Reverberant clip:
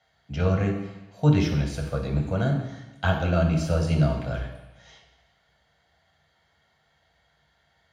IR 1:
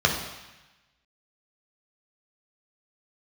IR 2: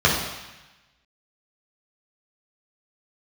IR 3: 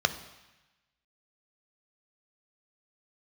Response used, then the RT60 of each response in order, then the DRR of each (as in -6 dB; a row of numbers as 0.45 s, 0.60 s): 1; 1.0 s, 1.0 s, 1.0 s; -0.5 dB, -6.5 dB, 9.0 dB